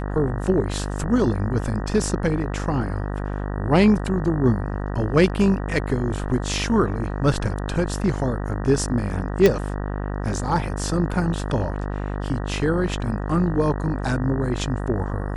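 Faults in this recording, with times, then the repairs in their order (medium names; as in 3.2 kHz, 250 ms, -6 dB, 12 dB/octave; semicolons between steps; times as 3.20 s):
buzz 50 Hz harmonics 38 -27 dBFS
9.46 s: pop -4 dBFS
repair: de-click; de-hum 50 Hz, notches 38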